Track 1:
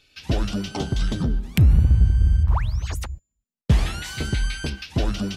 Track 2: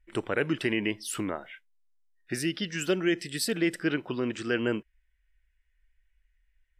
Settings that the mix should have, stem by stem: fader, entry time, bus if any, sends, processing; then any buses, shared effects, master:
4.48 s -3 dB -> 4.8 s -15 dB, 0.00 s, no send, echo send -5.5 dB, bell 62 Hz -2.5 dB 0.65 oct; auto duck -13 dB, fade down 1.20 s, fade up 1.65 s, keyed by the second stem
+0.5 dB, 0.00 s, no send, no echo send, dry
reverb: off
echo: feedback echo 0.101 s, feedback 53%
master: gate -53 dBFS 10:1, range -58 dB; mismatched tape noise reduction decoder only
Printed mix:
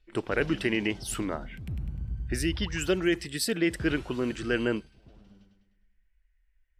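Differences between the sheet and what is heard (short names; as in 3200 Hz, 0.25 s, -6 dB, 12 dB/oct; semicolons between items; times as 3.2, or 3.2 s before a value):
stem 1 -3.0 dB -> -14.5 dB; master: missing gate -53 dBFS 10:1, range -58 dB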